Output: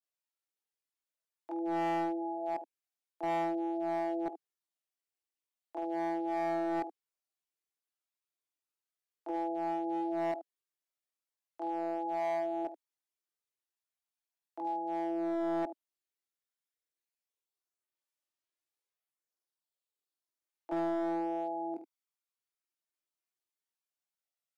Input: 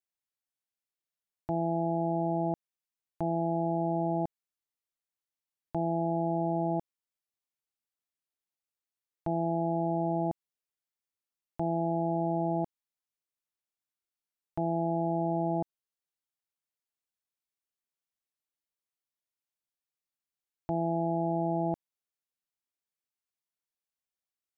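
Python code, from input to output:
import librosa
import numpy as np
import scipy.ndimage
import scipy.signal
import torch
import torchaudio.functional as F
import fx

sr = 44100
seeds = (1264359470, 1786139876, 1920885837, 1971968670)

y = scipy.signal.sosfilt(scipy.signal.butter(8, 290.0, 'highpass', fs=sr, output='sos'), x)
y = fx.chorus_voices(y, sr, voices=4, hz=0.2, base_ms=25, depth_ms=1.7, mix_pct=65)
y = fx.room_early_taps(y, sr, ms=(17, 48, 73), db=(-12.0, -13.5, -12.0))
y = np.clip(10.0 ** (29.0 / 20.0) * y, -1.0, 1.0) / 10.0 ** (29.0 / 20.0)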